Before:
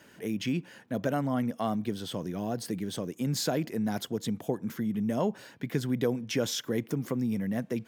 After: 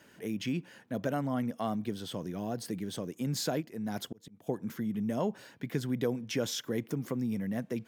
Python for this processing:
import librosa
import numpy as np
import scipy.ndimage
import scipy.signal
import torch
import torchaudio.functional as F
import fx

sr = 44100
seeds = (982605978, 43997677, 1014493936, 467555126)

y = fx.auto_swell(x, sr, attack_ms=526.0, at=(3.6, 4.46), fade=0.02)
y = F.gain(torch.from_numpy(y), -3.0).numpy()